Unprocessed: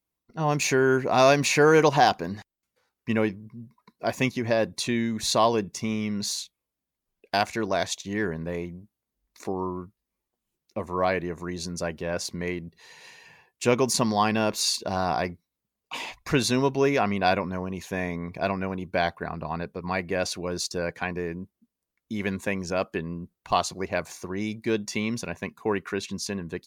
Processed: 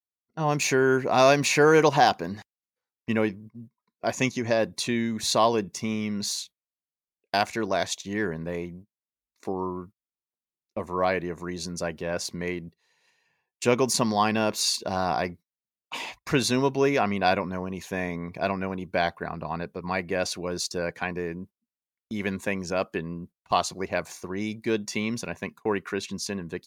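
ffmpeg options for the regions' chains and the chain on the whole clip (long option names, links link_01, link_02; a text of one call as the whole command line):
ffmpeg -i in.wav -filter_complex "[0:a]asettb=1/sr,asplit=3[link_01][link_02][link_03];[link_01]atrim=end=4.124[link_04];[link_02]atrim=start=4.12:end=4.58,asetpts=PTS-STARTPTS,afade=type=in:duration=0.004:curve=qsin,afade=type=out:start_time=0.456:duration=0.004:curve=qsin,lowpass=11000,equalizer=frequency=6500:width_type=o:width=0.39:gain=9[link_05];[link_03]atrim=start=4.576[link_06];[link_04][link_05]acrossfade=duration=0.004:curve1=hsin:curve2=qsin[link_07];[link_07][link_06]acrossfade=duration=0.004:curve1=qsin:curve2=hsin,highpass=frequency=84:poles=1,agate=range=-19dB:threshold=-44dB:ratio=16:detection=peak" out.wav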